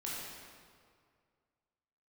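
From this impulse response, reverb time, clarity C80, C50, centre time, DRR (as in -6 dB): 2.1 s, 0.0 dB, -2.5 dB, 122 ms, -6.5 dB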